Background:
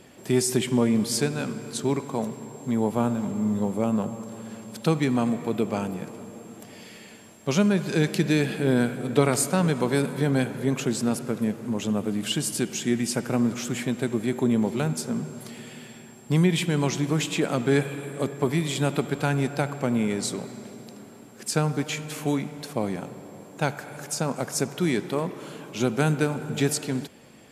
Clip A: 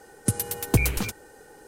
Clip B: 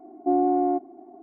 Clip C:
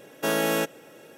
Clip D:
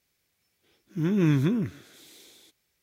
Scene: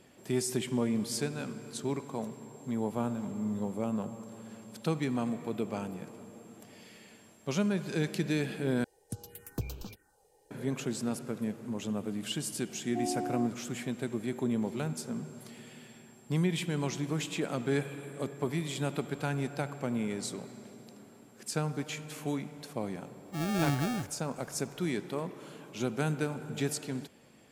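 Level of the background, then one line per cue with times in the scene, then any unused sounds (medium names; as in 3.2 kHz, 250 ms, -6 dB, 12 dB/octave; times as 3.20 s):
background -8.5 dB
8.84 s: replace with A -14.5 dB + touch-sensitive phaser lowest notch 200 Hz, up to 2 kHz, full sweep at -22.5 dBFS
12.69 s: add B -13 dB
22.37 s: add D -7 dB + sample-rate reducer 1 kHz
not used: C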